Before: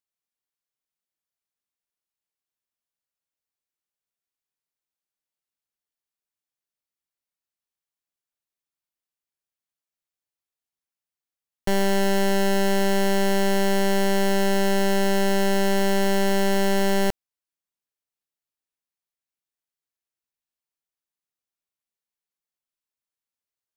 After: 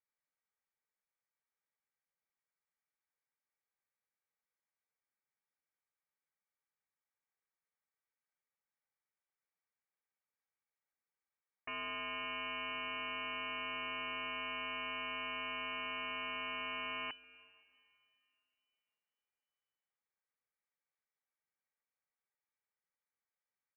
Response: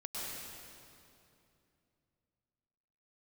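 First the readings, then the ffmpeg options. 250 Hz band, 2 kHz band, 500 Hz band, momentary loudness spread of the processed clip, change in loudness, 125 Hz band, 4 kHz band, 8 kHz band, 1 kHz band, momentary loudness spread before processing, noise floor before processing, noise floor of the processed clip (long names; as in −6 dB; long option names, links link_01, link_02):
−29.5 dB, −11.0 dB, −28.0 dB, 1 LU, −17.5 dB, can't be measured, −11.5 dB, below −40 dB, −15.0 dB, 1 LU, below −85 dBFS, below −85 dBFS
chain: -filter_complex "[0:a]highpass=frequency=600:width=0.5412,highpass=frequency=600:width=1.3066,aemphasis=mode=reproduction:type=75kf,aecho=1:1:2.8:0.48,aeval=exprs='clip(val(0),-1,0.0251)':channel_layout=same,aeval=exprs='0.0794*(cos(1*acos(clip(val(0)/0.0794,-1,1)))-cos(1*PI/2))+0.00447*(cos(7*acos(clip(val(0)/0.0794,-1,1)))-cos(7*PI/2))':channel_layout=same,aeval=exprs='0.0106*(abs(mod(val(0)/0.0106+3,4)-2)-1)':channel_layout=same,asplit=2[link_01][link_02];[1:a]atrim=start_sample=2205,adelay=135[link_03];[link_02][link_03]afir=irnorm=-1:irlink=0,volume=-22dB[link_04];[link_01][link_04]amix=inputs=2:normalize=0,lowpass=frequency=2600:width_type=q:width=0.5098,lowpass=frequency=2600:width_type=q:width=0.6013,lowpass=frequency=2600:width_type=q:width=0.9,lowpass=frequency=2600:width_type=q:width=2.563,afreqshift=-3000,volume=6.5dB"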